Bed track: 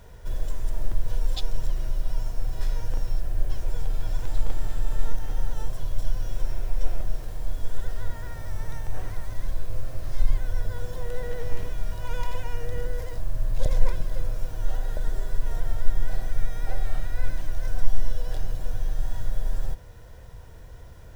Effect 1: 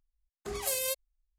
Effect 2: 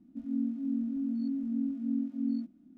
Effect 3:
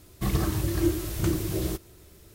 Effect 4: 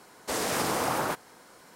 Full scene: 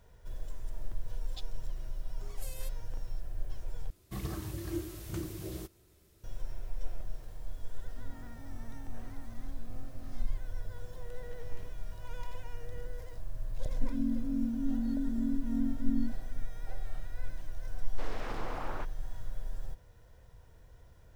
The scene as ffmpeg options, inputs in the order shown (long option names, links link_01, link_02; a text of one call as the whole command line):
ffmpeg -i bed.wav -i cue0.wav -i cue1.wav -i cue2.wav -i cue3.wav -filter_complex "[2:a]asplit=2[link_01][link_02];[0:a]volume=-12dB[link_03];[link_01]asoftclip=type=tanh:threshold=-39dB[link_04];[4:a]lowpass=3000[link_05];[link_03]asplit=2[link_06][link_07];[link_06]atrim=end=3.904[link_08];[3:a]atrim=end=2.34,asetpts=PTS-STARTPTS,volume=-12dB[link_09];[link_07]atrim=start=6.236[link_10];[1:a]atrim=end=1.38,asetpts=PTS-STARTPTS,volume=-17dB,afade=type=in:duration=0.004:curve=hsin,afade=type=out:start_time=1.376:duration=0.004:curve=hsin,adelay=1750[link_11];[link_04]atrim=end=2.77,asetpts=PTS-STARTPTS,volume=-12.5dB,afade=type=in:duration=0.004:curve=hsin,afade=type=out:start_time=2.766:duration=0.004:curve=hsin,adelay=7810[link_12];[link_02]atrim=end=2.77,asetpts=PTS-STARTPTS,volume=-1dB,afade=type=in:duration=0.004:curve=hsin,afade=type=out:start_time=2.766:duration=0.004:curve=hsin,adelay=13660[link_13];[link_05]atrim=end=1.75,asetpts=PTS-STARTPTS,volume=-12dB,afade=type=in:duration=0.004:curve=hsin,afade=type=out:start_time=1.746:duration=0.004:curve=hsin,adelay=17700[link_14];[link_08][link_09]acrossfade=duration=0.004:curve1=hsin:curve2=hsin[link_15];[link_15][link_10]acrossfade=duration=0.004:curve1=hsin:curve2=hsin[link_16];[link_16][link_11][link_12][link_13][link_14]amix=inputs=5:normalize=0" out.wav